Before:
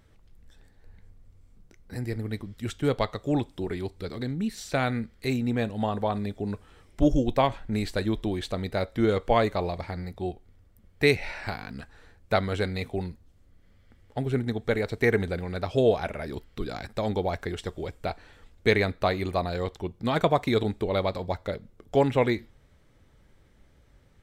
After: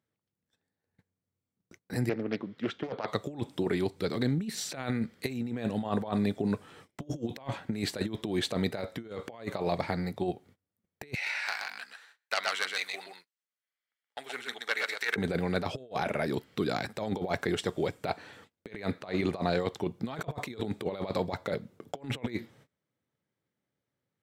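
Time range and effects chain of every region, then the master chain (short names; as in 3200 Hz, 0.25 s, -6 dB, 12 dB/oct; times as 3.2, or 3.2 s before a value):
2.09–3.08 HPF 210 Hz + air absorption 250 m + Doppler distortion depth 0.5 ms
11.14–15.16 self-modulated delay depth 0.1 ms + HPF 1400 Hz + echo 0.125 s -4 dB
19.01–19.6 block floating point 7-bit + air absorption 54 m
whole clip: HPF 120 Hz 24 dB/oct; gate -58 dBFS, range -26 dB; negative-ratio compressor -31 dBFS, ratio -0.5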